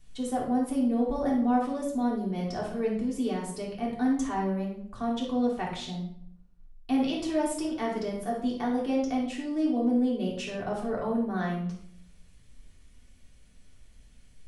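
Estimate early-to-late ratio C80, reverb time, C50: 8.0 dB, 0.65 s, 3.5 dB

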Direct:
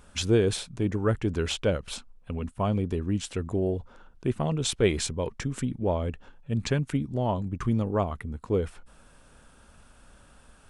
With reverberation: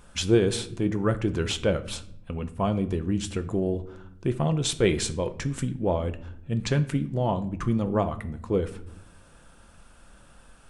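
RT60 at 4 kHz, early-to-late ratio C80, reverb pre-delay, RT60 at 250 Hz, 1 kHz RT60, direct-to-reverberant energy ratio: 0.45 s, 19.0 dB, 6 ms, 1.2 s, 0.60 s, 8.5 dB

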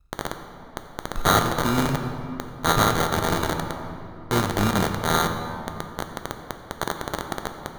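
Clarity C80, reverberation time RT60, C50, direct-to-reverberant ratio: 7.5 dB, 2.9 s, 6.5 dB, 5.5 dB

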